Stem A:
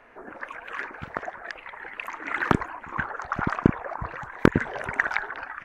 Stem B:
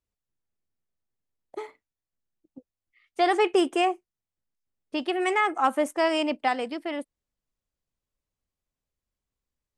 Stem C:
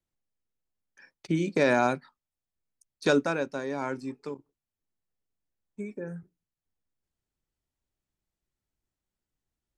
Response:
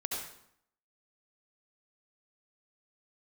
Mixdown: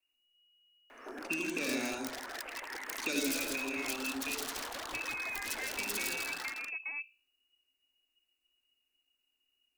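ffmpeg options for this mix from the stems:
-filter_complex "[0:a]aeval=exprs='(tanh(15.8*val(0)+0.35)-tanh(0.35))/15.8':c=same,aeval=exprs='0.0188*(abs(mod(val(0)/0.0188+3,4)-2)-1)':c=same,adelay=900,volume=-2dB,asplit=2[a][b];[b]volume=-5.5dB[c];[1:a]aemphasis=mode=reproduction:type=bsi,bandreject=f=60:t=h:w=6,bandreject=f=120:t=h:w=6,bandreject=f=180:t=h:w=6,bandreject=f=240:t=h:w=6,bandreject=f=300:t=h:w=6,bandreject=f=360:t=h:w=6,bandreject=f=420:t=h:w=6,bandreject=f=480:t=h:w=6,bandreject=f=540:t=h:w=6,volume=-11.5dB[d];[2:a]volume=-2.5dB,asplit=2[e][f];[f]volume=-8dB[g];[d][e]amix=inputs=2:normalize=0,lowpass=f=2.5k:t=q:w=0.5098,lowpass=f=2.5k:t=q:w=0.6013,lowpass=f=2.5k:t=q:w=0.9,lowpass=f=2.5k:t=q:w=2.563,afreqshift=-2900,acompressor=threshold=-36dB:ratio=6,volume=0dB[h];[3:a]atrim=start_sample=2205[i];[g][i]afir=irnorm=-1:irlink=0[j];[c]aecho=0:1:163:1[k];[a][h][j][k]amix=inputs=4:normalize=0,lowshelf=f=210:t=q:w=3:g=-7.5,acrossover=split=260|3000[l][m][n];[m]acompressor=threshold=-43dB:ratio=3[o];[l][o][n]amix=inputs=3:normalize=0,crystalizer=i=2.5:c=0"

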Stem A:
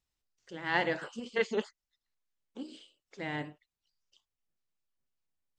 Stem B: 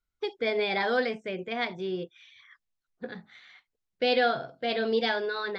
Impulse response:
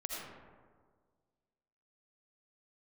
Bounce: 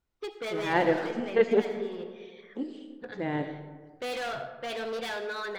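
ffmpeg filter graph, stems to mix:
-filter_complex "[0:a]tiltshelf=f=970:g=8,volume=1.5dB,asplit=3[a][b][c];[b]volume=-6.5dB[d];[1:a]asubboost=boost=7.5:cutoff=94,asoftclip=type=hard:threshold=-30.5dB,volume=-3dB,asplit=2[e][f];[f]volume=-7.5dB[g];[c]apad=whole_len=246430[h];[e][h]sidechaincompress=threshold=-29dB:ratio=8:attack=9.4:release=823[i];[2:a]atrim=start_sample=2205[j];[d][g]amix=inputs=2:normalize=0[k];[k][j]afir=irnorm=-1:irlink=0[l];[a][i][l]amix=inputs=3:normalize=0,bass=f=250:g=-6,treble=f=4k:g=-4"

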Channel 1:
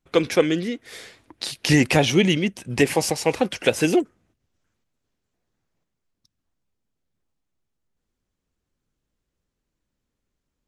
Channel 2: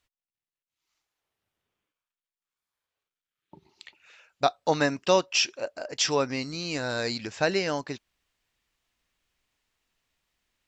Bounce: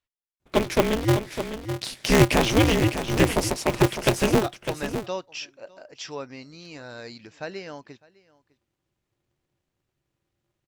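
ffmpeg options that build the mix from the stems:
-filter_complex "[0:a]equalizer=f=240:w=5.6:g=14,aeval=exprs='val(0)*sgn(sin(2*PI*110*n/s))':c=same,adelay=400,volume=-3.5dB,asplit=2[a][b];[b]volume=-9.5dB[c];[1:a]highshelf=f=7k:g=-10,volume=-9.5dB,asplit=2[d][e];[e]volume=-23dB[f];[c][f]amix=inputs=2:normalize=0,aecho=0:1:605:1[g];[a][d][g]amix=inputs=3:normalize=0"

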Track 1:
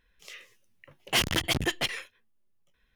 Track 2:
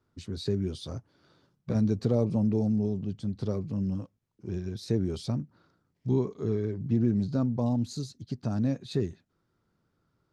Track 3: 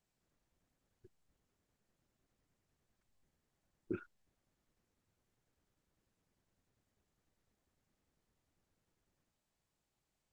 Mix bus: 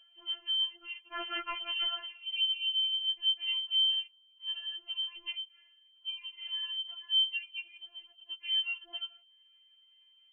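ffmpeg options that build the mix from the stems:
-filter_complex "[0:a]tremolo=f=1.4:d=0.62,volume=-2dB[a];[1:a]lowshelf=f=340:g=-5,acompressor=threshold=-31dB:ratio=6,aeval=exprs='val(0)+0.00398*(sin(2*PI*60*n/s)+sin(2*PI*2*60*n/s)/2+sin(2*PI*3*60*n/s)/3+sin(2*PI*4*60*n/s)/4+sin(2*PI*5*60*n/s)/5)':c=same,volume=2dB[b];[2:a]volume=-6dB[c];[a][b][c]amix=inputs=3:normalize=0,highpass=140,lowpass=f=2.8k:t=q:w=0.5098,lowpass=f=2.8k:t=q:w=0.6013,lowpass=f=2.8k:t=q:w=0.9,lowpass=f=2.8k:t=q:w=2.563,afreqshift=-3300,afftfilt=real='re*4*eq(mod(b,16),0)':imag='im*4*eq(mod(b,16),0)':win_size=2048:overlap=0.75"

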